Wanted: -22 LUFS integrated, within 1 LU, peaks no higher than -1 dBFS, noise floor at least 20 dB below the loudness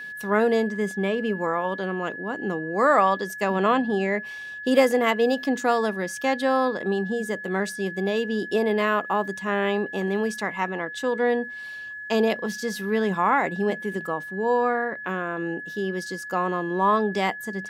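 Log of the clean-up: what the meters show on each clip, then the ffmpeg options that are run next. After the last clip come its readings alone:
steady tone 1700 Hz; tone level -34 dBFS; loudness -24.5 LUFS; peak -6.0 dBFS; loudness target -22.0 LUFS
-> -af "bandreject=f=1.7k:w=30"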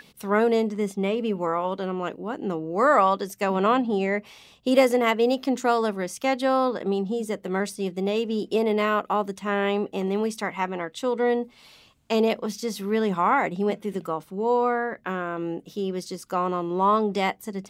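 steady tone none; loudness -25.0 LUFS; peak -6.5 dBFS; loudness target -22.0 LUFS
-> -af "volume=3dB"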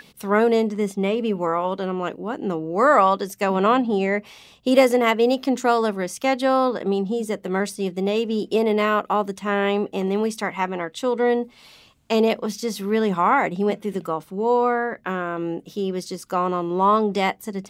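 loudness -22.0 LUFS; peak -3.5 dBFS; noise floor -52 dBFS

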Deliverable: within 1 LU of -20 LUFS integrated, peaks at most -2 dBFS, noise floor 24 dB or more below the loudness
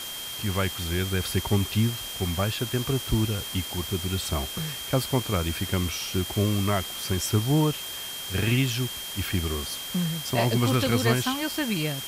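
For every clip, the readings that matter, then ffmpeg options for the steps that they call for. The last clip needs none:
steady tone 3200 Hz; tone level -36 dBFS; noise floor -36 dBFS; noise floor target -51 dBFS; loudness -26.5 LUFS; peak -10.0 dBFS; loudness target -20.0 LUFS
-> -af "bandreject=f=3.2k:w=30"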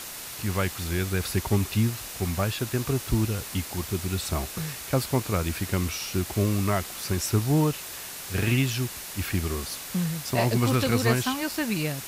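steady tone none; noise floor -38 dBFS; noise floor target -51 dBFS
-> -af "afftdn=nr=13:nf=-38"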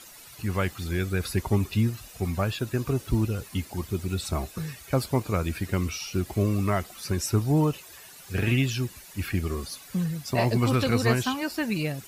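noise floor -48 dBFS; noise floor target -52 dBFS
-> -af "afftdn=nr=6:nf=-48"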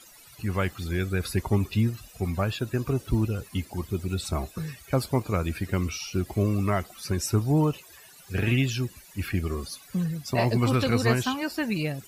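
noise floor -51 dBFS; noise floor target -52 dBFS
-> -af "afftdn=nr=6:nf=-51"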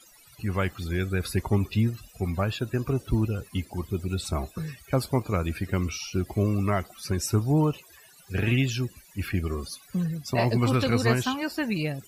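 noise floor -54 dBFS; loudness -27.5 LUFS; peak -10.5 dBFS; loudness target -20.0 LUFS
-> -af "volume=7.5dB"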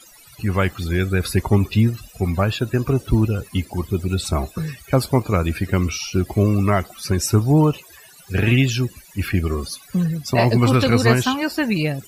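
loudness -20.0 LUFS; peak -3.0 dBFS; noise floor -47 dBFS

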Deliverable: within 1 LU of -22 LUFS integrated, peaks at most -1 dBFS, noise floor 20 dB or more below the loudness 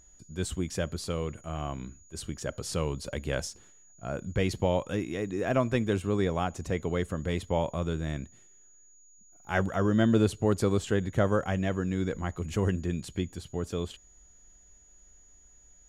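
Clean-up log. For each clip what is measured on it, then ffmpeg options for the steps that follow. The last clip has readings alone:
steady tone 6800 Hz; tone level -57 dBFS; loudness -30.5 LUFS; peak -12.5 dBFS; loudness target -22.0 LUFS
-> -af "bandreject=f=6.8k:w=30"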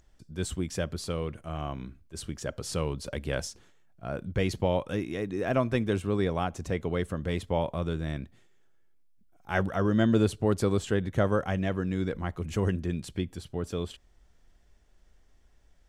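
steady tone none; loudness -30.5 LUFS; peak -12.5 dBFS; loudness target -22.0 LUFS
-> -af "volume=8.5dB"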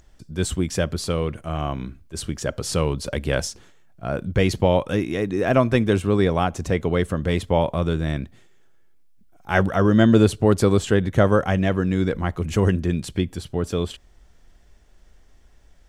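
loudness -22.0 LUFS; peak -4.0 dBFS; noise floor -53 dBFS

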